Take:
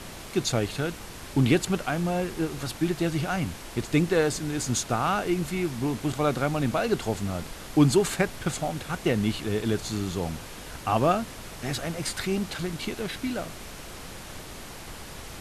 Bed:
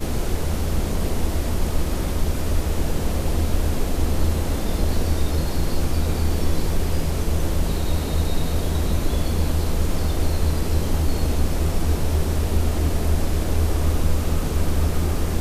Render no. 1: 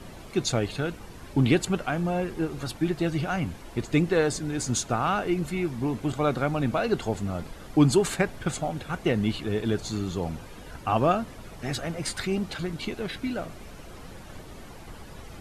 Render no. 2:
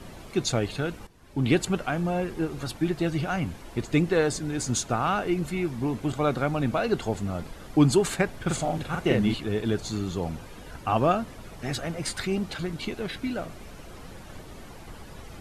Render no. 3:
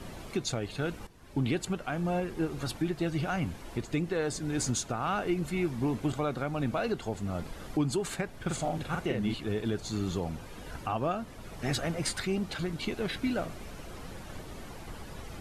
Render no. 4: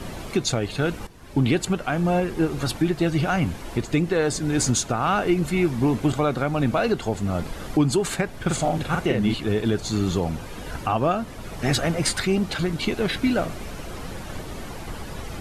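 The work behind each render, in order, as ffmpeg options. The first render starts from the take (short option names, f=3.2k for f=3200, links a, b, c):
-af "afftdn=nr=10:nf=-42"
-filter_complex "[0:a]asettb=1/sr,asplit=3[a][b][c];[a]atrim=end=8.434[d];[b]atrim=start=8.43:end=9.34,asetpts=PTS-STARTPTS,afade=t=in:d=0.004:c=qsin,afade=t=out:st=0.906:d=0.004:c=qsin,asplit=2[e][f];[f]adelay=43,volume=-2.5dB[g];[e][g]amix=inputs=2:normalize=0,atrim=end_sample=40131[h];[c]atrim=start=9.336[i];[d][h]acrossfade=d=0.004:c1=hsin:c2=qsin[j];[j][i]acrossfade=d=0.004:c1=qsin:c2=hsin,asplit=2[k][l];[k]atrim=end=1.07,asetpts=PTS-STARTPTS,afade=t=out:st=1.066:d=0.004:c=hsin:silence=0.188365[m];[l]atrim=start=1.07,asetpts=PTS-STARTPTS,afade=t=in:d=0.47:c=qua:silence=0.188365[n];[m][n]concat=n=2:v=0:a=1"
-af "alimiter=limit=-20.5dB:level=0:latency=1:release=494"
-af "volume=9dB"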